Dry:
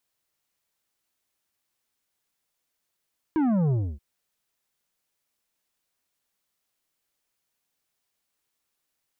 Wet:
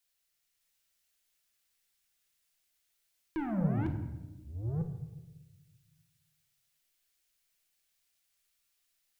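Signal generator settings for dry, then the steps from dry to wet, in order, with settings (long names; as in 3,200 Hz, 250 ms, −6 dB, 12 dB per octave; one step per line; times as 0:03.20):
bass drop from 330 Hz, over 0.63 s, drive 9 dB, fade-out 0.28 s, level −21 dB
delay that plays each chunk backwards 602 ms, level −2 dB
octave-band graphic EQ 125/250/500/1,000 Hz −8/−11/−6/−9 dB
rectangular room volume 540 cubic metres, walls mixed, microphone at 0.79 metres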